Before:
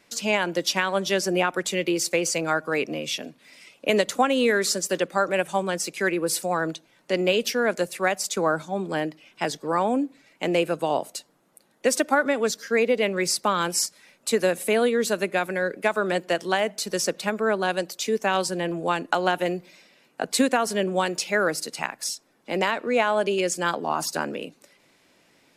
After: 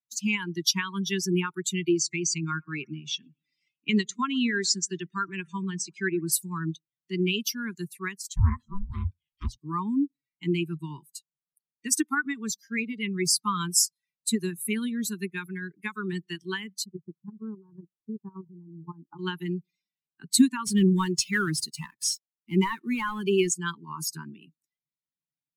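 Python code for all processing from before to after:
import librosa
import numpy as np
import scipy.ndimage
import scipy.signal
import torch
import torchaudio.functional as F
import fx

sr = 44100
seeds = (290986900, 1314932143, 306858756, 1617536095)

y = fx.chain(x, sr, fx.lowpass(hz=7900.0, slope=24),
    fx.echo_bbd(ms=115, stages=2048, feedback_pct=61, wet_db=-19), at=(1.98, 6.32))
y = fx.chain(y, sr, fx.ring_mod(carrier_hz=400.0),
    fx.doppler_dist(depth_ms=0.31), at=(8.18, 9.58))
y = fx.chain(y, sr, fx.lowpass(hz=1000.0, slope=24),
    fx.level_steps(step_db=12), at=(16.84, 19.19))
y = fx.chain(y, sr, fx.cvsd(bps=64000),
    fx.leveller(passes=1), at=(20.66, 23.49))
y = fx.bin_expand(y, sr, power=2.0)
y = scipy.signal.sosfilt(scipy.signal.ellip(3, 1.0, 40, [380.0, 970.0], 'bandstop', fs=sr, output='sos'), y)
y = fx.bass_treble(y, sr, bass_db=14, treble_db=7)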